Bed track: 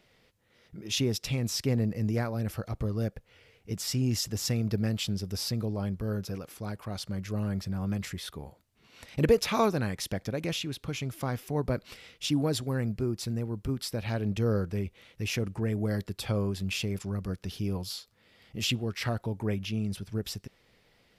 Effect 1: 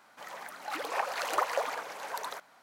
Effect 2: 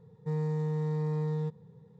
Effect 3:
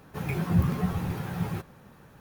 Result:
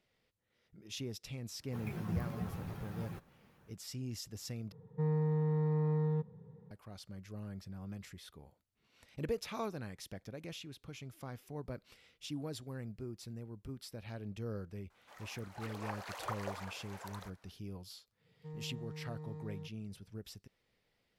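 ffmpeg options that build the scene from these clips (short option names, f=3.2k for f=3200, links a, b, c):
-filter_complex "[2:a]asplit=2[a][b];[0:a]volume=-14dB[c];[a]lowpass=2.1k[d];[c]asplit=2[e][f];[e]atrim=end=4.724[g];[d]atrim=end=1.99,asetpts=PTS-STARTPTS,volume=-1dB[h];[f]atrim=start=6.706[i];[3:a]atrim=end=2.2,asetpts=PTS-STARTPTS,volume=-13dB,afade=t=in:d=0.1,afade=t=out:st=2.1:d=0.1,adelay=1580[j];[1:a]atrim=end=2.62,asetpts=PTS-STARTPTS,volume=-12dB,afade=t=in:d=0.004:c=hsin,afade=t=out:st=2.616:d=0.004:c=hsin,adelay=14900[k];[b]atrim=end=1.99,asetpts=PTS-STARTPTS,volume=-15.5dB,afade=t=in:d=0.1,afade=t=out:st=1.89:d=0.1,adelay=18180[l];[g][h]acrossfade=d=0.004:c1=hsin:c2=hsin[m];[m][i]acrossfade=d=0.004:c1=hsin:c2=hsin[n];[n][j][k][l]amix=inputs=4:normalize=0"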